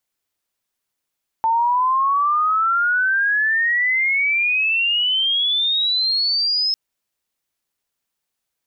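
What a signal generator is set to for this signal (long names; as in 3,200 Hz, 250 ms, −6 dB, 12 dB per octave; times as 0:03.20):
glide logarithmic 890 Hz → 5,200 Hz −14.5 dBFS → −16.5 dBFS 5.30 s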